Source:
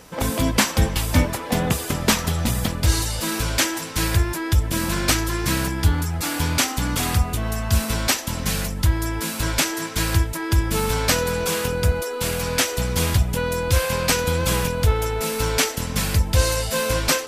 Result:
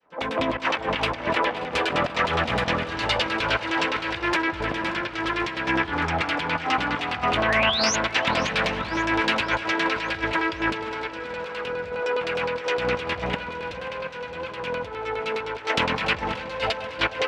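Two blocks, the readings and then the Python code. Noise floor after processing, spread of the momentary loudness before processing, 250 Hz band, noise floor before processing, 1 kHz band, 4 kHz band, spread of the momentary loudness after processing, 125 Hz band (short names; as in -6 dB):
-36 dBFS, 4 LU, -4.5 dB, -30 dBFS, +2.5 dB, -2.5 dB, 8 LU, -14.5 dB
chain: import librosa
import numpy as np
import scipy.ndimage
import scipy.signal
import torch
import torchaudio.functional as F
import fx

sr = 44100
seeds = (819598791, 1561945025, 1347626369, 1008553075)

y = fx.fade_in_head(x, sr, length_s=0.85)
y = fx.bass_treble(y, sr, bass_db=-12, treble_db=-7)
y = fx.over_compress(y, sr, threshold_db=-31.0, ratio=-0.5)
y = fx.dynamic_eq(y, sr, hz=2600.0, q=1.2, threshold_db=-46.0, ratio=4.0, max_db=6)
y = fx.filter_lfo_lowpass(y, sr, shape='saw_down', hz=9.7, low_hz=590.0, high_hz=4900.0, q=1.5)
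y = fx.echo_alternate(y, sr, ms=145, hz=1300.0, feedback_pct=81, wet_db=-14.0)
y = fx.spec_paint(y, sr, seeds[0], shape='rise', start_s=7.48, length_s=0.48, low_hz=1600.0, high_hz=6800.0, level_db=-29.0)
y = fx.highpass(y, sr, hz=130.0, slope=6)
y = fx.echo_feedback(y, sr, ms=533, feedback_pct=55, wet_db=-16.0)
y = fx.doppler_dist(y, sr, depth_ms=0.21)
y = y * librosa.db_to_amplitude(4.0)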